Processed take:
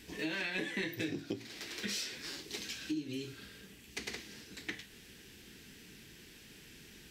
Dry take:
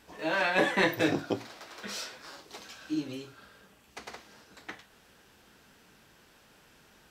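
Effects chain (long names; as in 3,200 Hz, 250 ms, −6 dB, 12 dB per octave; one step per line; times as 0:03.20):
flat-topped bell 870 Hz −14.5 dB
downward compressor 8 to 1, threshold −41 dBFS, peak gain reduction 17.5 dB
level +6.5 dB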